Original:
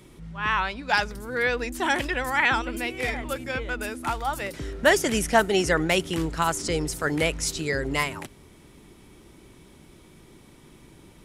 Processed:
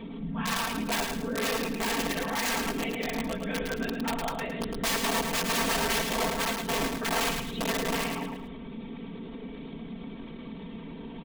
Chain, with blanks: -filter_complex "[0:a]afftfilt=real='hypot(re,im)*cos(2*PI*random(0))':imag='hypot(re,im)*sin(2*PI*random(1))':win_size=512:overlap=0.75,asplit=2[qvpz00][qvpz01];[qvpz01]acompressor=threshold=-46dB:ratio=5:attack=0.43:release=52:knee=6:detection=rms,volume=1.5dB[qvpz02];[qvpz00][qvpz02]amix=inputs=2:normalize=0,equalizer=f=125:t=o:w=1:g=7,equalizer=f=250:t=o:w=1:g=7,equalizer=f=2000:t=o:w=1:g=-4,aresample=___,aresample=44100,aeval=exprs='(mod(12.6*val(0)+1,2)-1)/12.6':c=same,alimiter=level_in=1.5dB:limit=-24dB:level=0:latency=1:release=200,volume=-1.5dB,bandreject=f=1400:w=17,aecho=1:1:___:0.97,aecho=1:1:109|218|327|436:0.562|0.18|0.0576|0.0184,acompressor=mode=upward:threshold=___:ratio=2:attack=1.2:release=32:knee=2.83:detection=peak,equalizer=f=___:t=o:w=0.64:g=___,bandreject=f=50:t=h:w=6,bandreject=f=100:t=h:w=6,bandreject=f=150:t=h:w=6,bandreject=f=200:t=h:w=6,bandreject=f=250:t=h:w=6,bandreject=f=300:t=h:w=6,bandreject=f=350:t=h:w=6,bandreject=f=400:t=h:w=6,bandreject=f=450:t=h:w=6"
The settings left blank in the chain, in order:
8000, 4.4, -31dB, 87, -14